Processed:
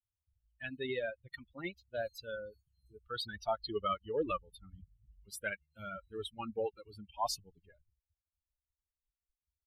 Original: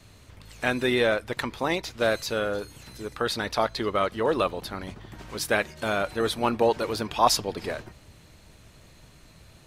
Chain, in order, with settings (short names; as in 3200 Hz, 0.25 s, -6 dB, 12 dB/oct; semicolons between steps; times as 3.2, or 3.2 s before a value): per-bin expansion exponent 3; Doppler pass-by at 3.68, 14 m/s, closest 19 m; gain -2.5 dB